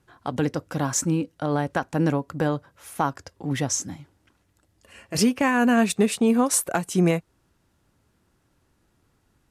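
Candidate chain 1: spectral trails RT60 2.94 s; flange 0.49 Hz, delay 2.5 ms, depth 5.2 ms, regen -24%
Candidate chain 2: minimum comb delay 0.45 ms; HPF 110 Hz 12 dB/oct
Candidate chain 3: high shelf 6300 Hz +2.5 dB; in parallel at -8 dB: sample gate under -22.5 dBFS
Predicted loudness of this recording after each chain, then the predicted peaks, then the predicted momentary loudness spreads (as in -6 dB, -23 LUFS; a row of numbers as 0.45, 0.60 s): -22.5, -25.5, -21.0 LUFS; -4.5, -8.0, -5.5 dBFS; 15, 12, 10 LU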